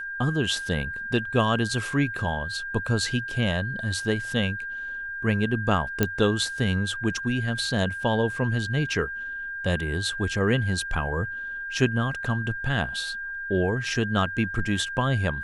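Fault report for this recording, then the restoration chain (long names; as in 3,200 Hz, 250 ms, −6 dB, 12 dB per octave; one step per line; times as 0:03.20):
whistle 1,600 Hz −31 dBFS
0:06.03: click −7 dBFS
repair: click removal
notch filter 1,600 Hz, Q 30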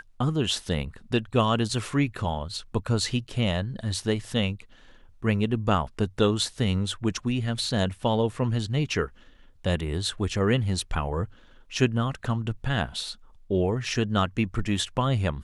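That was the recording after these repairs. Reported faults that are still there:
none of them is left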